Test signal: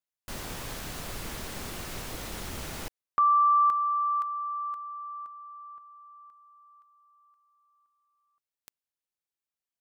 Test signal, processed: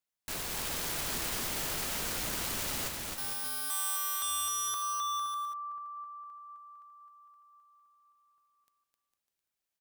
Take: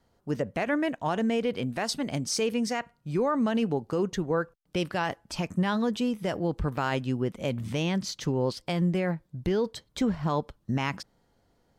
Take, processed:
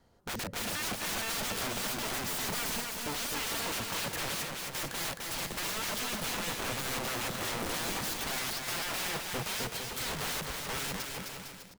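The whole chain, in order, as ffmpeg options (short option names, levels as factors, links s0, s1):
-af "aeval=exprs='(mod(47.3*val(0)+1,2)-1)/47.3':c=same,aecho=1:1:260|455|601.2|710.9|793.2:0.631|0.398|0.251|0.158|0.1,volume=1.26"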